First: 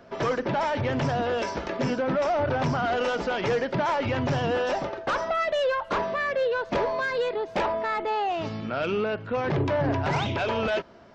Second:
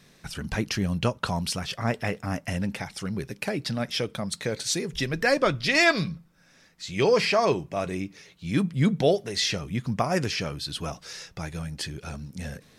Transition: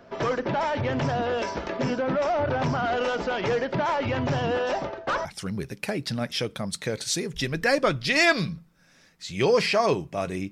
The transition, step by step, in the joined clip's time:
first
4.59–5.25 s: three bands expanded up and down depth 40%
5.25 s: go over to second from 2.84 s

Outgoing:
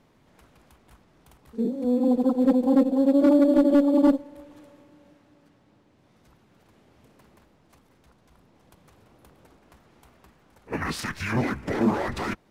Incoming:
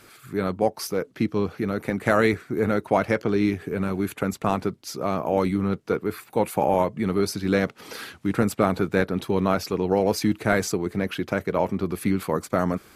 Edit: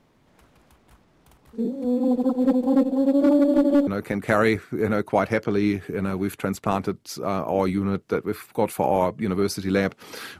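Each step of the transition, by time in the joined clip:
outgoing
3.87 s: go over to incoming from 1.65 s

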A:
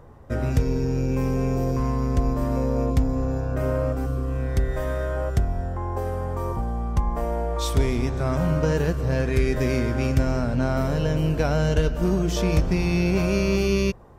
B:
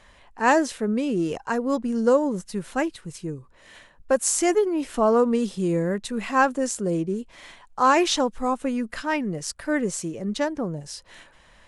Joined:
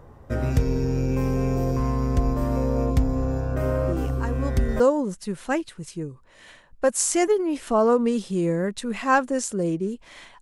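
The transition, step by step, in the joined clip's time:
A
3.88 s: add B from 1.15 s 0.92 s -7 dB
4.80 s: go over to B from 2.07 s

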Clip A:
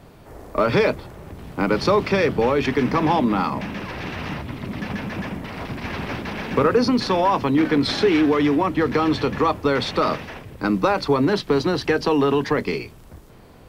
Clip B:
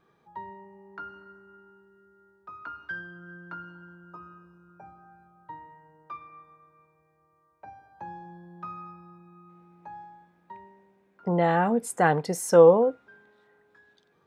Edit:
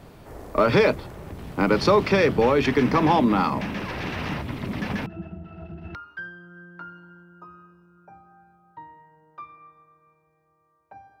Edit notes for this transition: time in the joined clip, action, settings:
clip A
5.06–5.95 s: pitch-class resonator E, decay 0.12 s
5.95 s: go over to clip B from 2.67 s

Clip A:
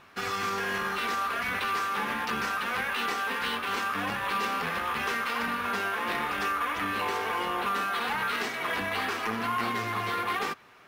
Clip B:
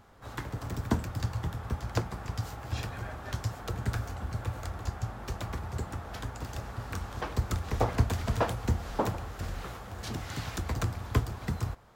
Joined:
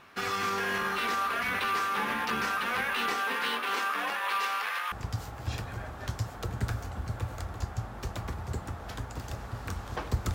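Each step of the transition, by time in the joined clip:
clip A
3.17–4.92 s: high-pass 160 Hz -> 1.2 kHz
4.92 s: go over to clip B from 2.17 s

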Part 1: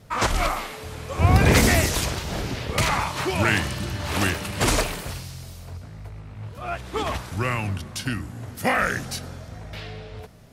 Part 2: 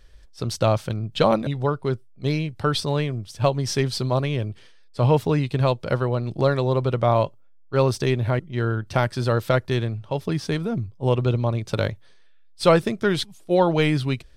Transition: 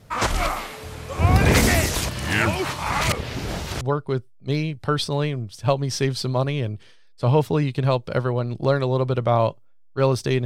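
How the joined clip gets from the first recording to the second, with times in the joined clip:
part 1
2.09–3.81 s: reverse
3.81 s: go over to part 2 from 1.57 s

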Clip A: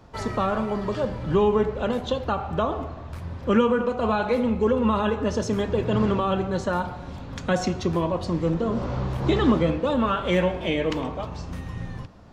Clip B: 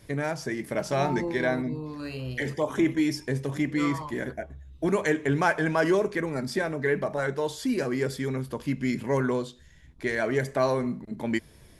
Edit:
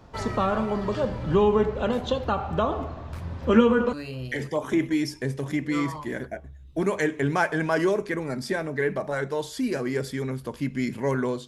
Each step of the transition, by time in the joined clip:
clip A
3.40–3.93 s: doubling 13 ms -6 dB
3.93 s: go over to clip B from 1.99 s

